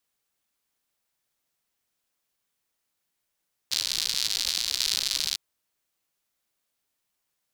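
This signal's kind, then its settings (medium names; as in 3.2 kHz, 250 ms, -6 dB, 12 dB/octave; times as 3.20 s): rain from filtered ticks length 1.65 s, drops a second 130, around 4.3 kHz, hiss -24 dB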